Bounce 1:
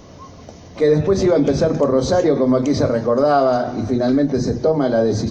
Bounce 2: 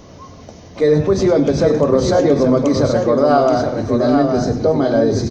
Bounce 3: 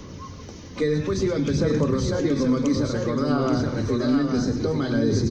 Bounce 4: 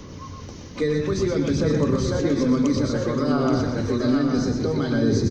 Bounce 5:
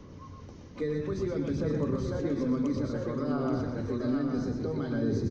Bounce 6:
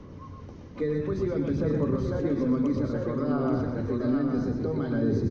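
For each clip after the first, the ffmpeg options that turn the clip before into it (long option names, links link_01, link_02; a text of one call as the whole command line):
ffmpeg -i in.wav -af "aecho=1:1:100|826:0.2|0.531,volume=1dB" out.wav
ffmpeg -i in.wav -filter_complex "[0:a]equalizer=frequency=680:width=2.9:gain=-14.5,acrossover=split=250|1400[link_01][link_02][link_03];[link_01]acompressor=threshold=-24dB:ratio=4[link_04];[link_02]acompressor=threshold=-27dB:ratio=4[link_05];[link_03]acompressor=threshold=-36dB:ratio=4[link_06];[link_04][link_05][link_06]amix=inputs=3:normalize=0,aphaser=in_gain=1:out_gain=1:delay=4.1:decay=0.27:speed=0.58:type=sinusoidal" out.wav
ffmpeg -i in.wav -filter_complex "[0:a]asplit=2[link_01][link_02];[link_02]adelay=122.4,volume=-6dB,highshelf=frequency=4000:gain=-2.76[link_03];[link_01][link_03]amix=inputs=2:normalize=0" out.wav
ffmpeg -i in.wav -af "highshelf=frequency=2700:gain=-10.5,volume=-8.5dB" out.wav
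ffmpeg -i in.wav -af "lowpass=frequency=2600:poles=1,volume=3.5dB" out.wav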